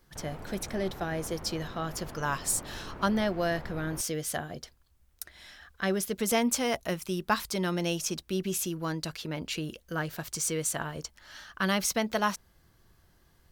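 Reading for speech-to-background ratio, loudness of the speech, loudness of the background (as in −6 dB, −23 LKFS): 13.5 dB, −31.5 LKFS, −45.0 LKFS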